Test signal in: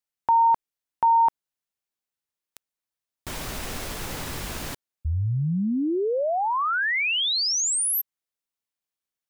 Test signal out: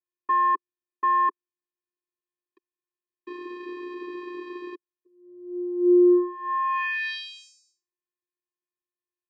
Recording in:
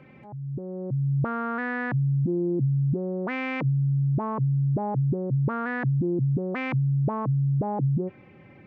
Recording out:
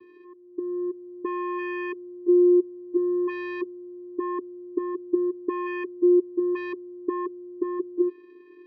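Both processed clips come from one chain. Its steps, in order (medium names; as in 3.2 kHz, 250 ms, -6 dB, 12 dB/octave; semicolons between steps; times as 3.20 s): low-pass 2.8 kHz 24 dB/octave; vocoder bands 8, square 355 Hz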